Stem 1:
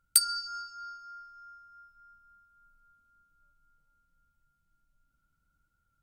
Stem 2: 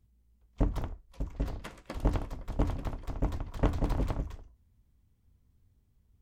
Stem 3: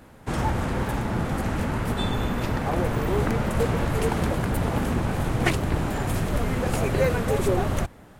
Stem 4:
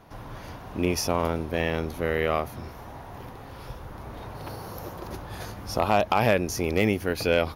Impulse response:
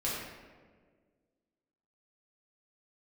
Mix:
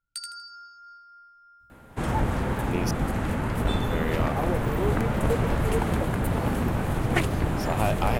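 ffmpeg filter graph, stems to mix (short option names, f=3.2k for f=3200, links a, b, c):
-filter_complex "[0:a]lowpass=6.3k,bandreject=f=52.24:t=h:w=4,bandreject=f=104.48:t=h:w=4,bandreject=f=156.72:t=h:w=4,bandreject=f=208.96:t=h:w=4,bandreject=f=261.2:t=h:w=4,bandreject=f=313.44:t=h:w=4,bandreject=f=365.68:t=h:w=4,bandreject=f=417.92:t=h:w=4,bandreject=f=470.16:t=h:w=4,bandreject=f=522.4:t=h:w=4,bandreject=f=574.64:t=h:w=4,bandreject=f=626.88:t=h:w=4,bandreject=f=679.12:t=h:w=4,bandreject=f=731.36:t=h:w=4,bandreject=f=783.6:t=h:w=4,bandreject=f=835.84:t=h:w=4,bandreject=f=888.08:t=h:w=4,bandreject=f=940.32:t=h:w=4,bandreject=f=992.56:t=h:w=4,bandreject=f=1.0448k:t=h:w=4,bandreject=f=1.09704k:t=h:w=4,bandreject=f=1.14928k:t=h:w=4,bandreject=f=1.20152k:t=h:w=4,bandreject=f=1.25376k:t=h:w=4,bandreject=f=1.306k:t=h:w=4,bandreject=f=1.35824k:t=h:w=4,volume=-9dB,asplit=2[a][b];[b]volume=-4dB[c];[1:a]adelay=1600,volume=-1.5dB[d];[2:a]equalizer=f=5.3k:w=1.4:g=-5.5,adelay=1700,volume=-1dB[e];[3:a]adelay=1900,volume=-5.5dB,asplit=3[f][g][h];[f]atrim=end=2.91,asetpts=PTS-STARTPTS,afade=t=out:st=2.906:d=0.004:c=hsin[i];[g]atrim=start=2.91:end=3.65,asetpts=PTS-STARTPTS,volume=0[j];[h]atrim=start=3.65,asetpts=PTS-STARTPTS,afade=t=in:d=0.004:c=hsin[k];[i][j][k]concat=n=3:v=0:a=1[l];[c]aecho=0:1:80|160|240|320:1|0.27|0.0729|0.0197[m];[a][d][e][l][m]amix=inputs=5:normalize=0"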